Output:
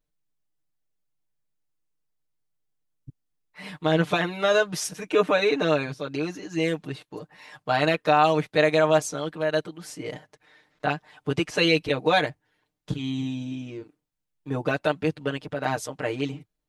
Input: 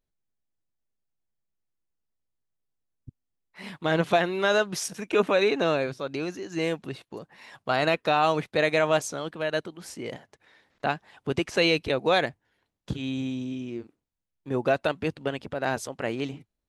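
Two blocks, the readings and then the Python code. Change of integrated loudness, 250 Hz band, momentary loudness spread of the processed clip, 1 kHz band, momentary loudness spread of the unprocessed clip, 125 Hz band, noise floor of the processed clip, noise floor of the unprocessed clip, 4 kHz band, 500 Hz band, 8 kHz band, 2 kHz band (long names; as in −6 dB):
+2.0 dB, +2.5 dB, 16 LU, +2.0 dB, 15 LU, +4.0 dB, −80 dBFS, −82 dBFS, +1.5 dB, +1.5 dB, +1.5 dB, +1.5 dB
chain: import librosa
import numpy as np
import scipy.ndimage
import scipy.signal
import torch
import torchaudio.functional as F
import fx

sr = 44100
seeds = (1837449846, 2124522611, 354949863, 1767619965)

y = x + 0.99 * np.pad(x, (int(6.6 * sr / 1000.0), 0))[:len(x)]
y = y * 10.0 ** (-1.5 / 20.0)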